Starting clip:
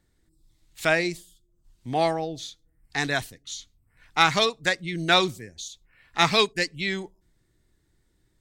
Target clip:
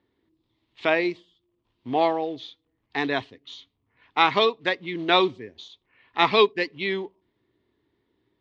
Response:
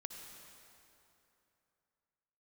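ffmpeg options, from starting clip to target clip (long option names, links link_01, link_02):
-af "acrusher=bits=5:mode=log:mix=0:aa=0.000001,highpass=130,equalizer=frequency=160:width_type=q:width=4:gain=-9,equalizer=frequency=270:width_type=q:width=4:gain=5,equalizer=frequency=410:width_type=q:width=4:gain=7,equalizer=frequency=1000:width_type=q:width=4:gain=7,equalizer=frequency=1500:width_type=q:width=4:gain=-6,equalizer=frequency=3200:width_type=q:width=4:gain=3,lowpass=frequency=3600:width=0.5412,lowpass=frequency=3600:width=1.3066"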